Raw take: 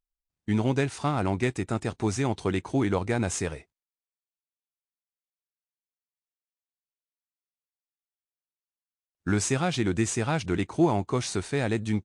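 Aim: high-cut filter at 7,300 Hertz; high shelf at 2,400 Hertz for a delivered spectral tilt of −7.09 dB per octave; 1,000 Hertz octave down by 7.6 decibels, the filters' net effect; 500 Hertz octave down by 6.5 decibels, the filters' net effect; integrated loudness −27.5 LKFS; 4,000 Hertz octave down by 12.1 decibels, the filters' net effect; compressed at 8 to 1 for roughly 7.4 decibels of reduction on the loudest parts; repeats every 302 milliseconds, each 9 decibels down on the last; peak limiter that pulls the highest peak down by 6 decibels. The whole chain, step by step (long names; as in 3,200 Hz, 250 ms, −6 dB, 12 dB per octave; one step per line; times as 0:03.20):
low-pass filter 7,300 Hz
parametric band 500 Hz −8 dB
parametric band 1,000 Hz −5.5 dB
high-shelf EQ 2,400 Hz −6.5 dB
parametric band 4,000 Hz −9 dB
downward compressor 8 to 1, threshold −29 dBFS
brickwall limiter −27 dBFS
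repeating echo 302 ms, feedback 35%, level −9 dB
level +10 dB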